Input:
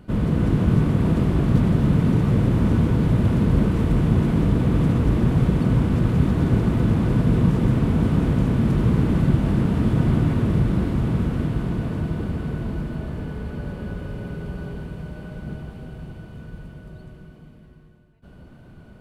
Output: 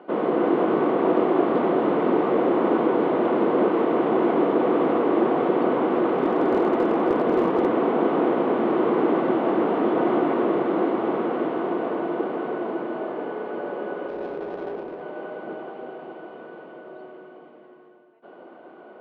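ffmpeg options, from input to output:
-filter_complex "[0:a]highpass=f=330:w=0.5412,highpass=f=330:w=1.3066,equalizer=f=350:t=q:w=4:g=6,equalizer=f=510:t=q:w=4:g=4,equalizer=f=740:t=q:w=4:g=8,equalizer=f=1.1k:t=q:w=4:g=4,equalizer=f=1.7k:t=q:w=4:g=-4,equalizer=f=2.5k:t=q:w=4:g=-5,lowpass=f=2.8k:w=0.5412,lowpass=f=2.8k:w=1.3066,asettb=1/sr,asplit=3[a][b][c];[a]atrim=end=6.124[d];[b]atrim=start=6.12:end=7.67,asetpts=PTS-STARTPTS,afade=t=in:d=0.004:c=qsin,afade=t=out:st=1.546:d=0.004:c=qsin,asoftclip=type=hard:threshold=-19dB[e];[c]atrim=start=7.666[f];[d][e]acrossfade=d=0.004:c1=hsin:c2=qsin[g];[g][f]acrossfade=d=0.004:c1=qsin:c2=hsin,asettb=1/sr,asplit=3[h][i][j];[h]atrim=end=14.084[k];[i]atrim=start=14.08:end=15.01,asetpts=PTS-STARTPTS,afade=t=in:d=0.004:c=qsin,afade=t=out:st=0.926:d=0.004:c=qsin,adynamicsmooth=sensitivity=5:basefreq=550[l];[j]atrim=start=15.006[m];[k][l]acrossfade=d=0.004:c1=hsin:c2=qsin[n];[n][m]acrossfade=d=0.004:c1=qsin:c2=hsin,volume=5.5dB"

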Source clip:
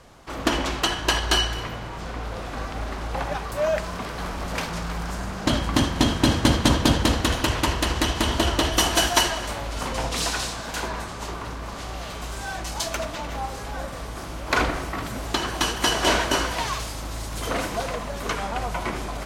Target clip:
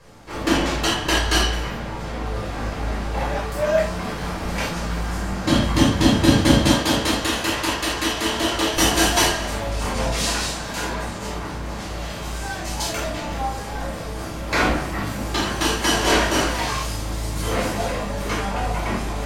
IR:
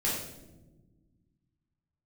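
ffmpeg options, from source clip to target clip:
-filter_complex "[0:a]asettb=1/sr,asplit=3[a][b][c];[a]atrim=end=6.674[d];[b]atrim=start=6.67:end=8.77,asetpts=PTS-STARTPTS,afade=t=in:d=0.004:c=qsin,afade=t=out:st=2.096:d=0.004:c=qsin,lowshelf=f=300:g=-12[e];[c]atrim=start=8.766[f];[d][e]acrossfade=d=0.004:c1=hsin:c2=qsin[g];[g][f]acrossfade=d=0.004:c1=qsin:c2=hsin[h];[1:a]atrim=start_sample=2205,afade=t=out:st=0.14:d=0.01,atrim=end_sample=6615[i];[h][i]afir=irnorm=-1:irlink=0,volume=-3.5dB"

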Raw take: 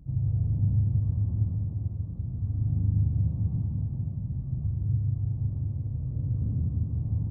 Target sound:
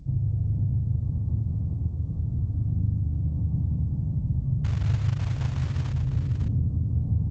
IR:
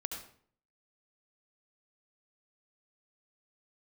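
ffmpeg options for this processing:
-filter_complex "[0:a]acompressor=threshold=-28dB:ratio=8,asettb=1/sr,asplit=3[a][b][c];[a]atrim=end=4.644[d];[b]atrim=start=4.64:end=5.93,asetpts=PTS-STARTPTS,afade=t=in:d=0.004:c=qsin,afade=t=out:st=1.286:d=0.004:c=qsin,acrusher=bits=4:mode=log:mix=0:aa=0.000001[e];[c]atrim=start=5.926[f];[d][e]acrossfade=d=0.004:c1=hsin:c2=qsin[g];[g][f]acrossfade=d=0.004:c1=qsin:c2=hsin,aecho=1:1:553:0.447,asplit=2[h][i];[1:a]atrim=start_sample=2205,afade=t=out:st=0.18:d=0.01,atrim=end_sample=8379[j];[i][j]afir=irnorm=-1:irlink=0,volume=-15.5dB[k];[h][k]amix=inputs=2:normalize=0,volume=5dB" -ar 16000 -c:a g722

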